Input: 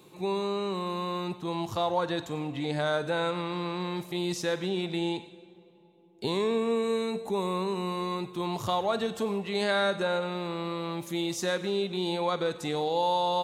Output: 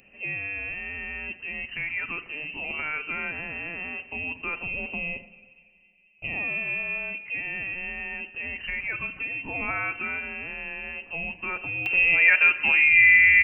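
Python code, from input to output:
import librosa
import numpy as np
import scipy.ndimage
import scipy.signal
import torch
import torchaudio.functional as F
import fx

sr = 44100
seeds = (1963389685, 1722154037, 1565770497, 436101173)

y = fx.freq_invert(x, sr, carrier_hz=2900)
y = fx.peak_eq(y, sr, hz=1900.0, db=fx.steps((0.0, -12.0), (11.86, 3.5)), octaves=2.0)
y = y * librosa.db_to_amplitude(7.5)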